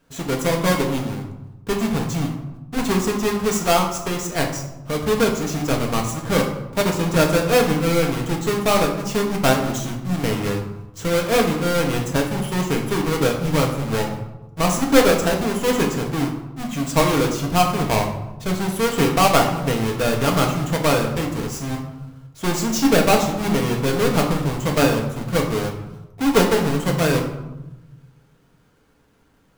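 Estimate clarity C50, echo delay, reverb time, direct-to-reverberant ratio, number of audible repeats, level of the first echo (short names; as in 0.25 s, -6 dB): 6.5 dB, none, 1.0 s, 0.0 dB, none, none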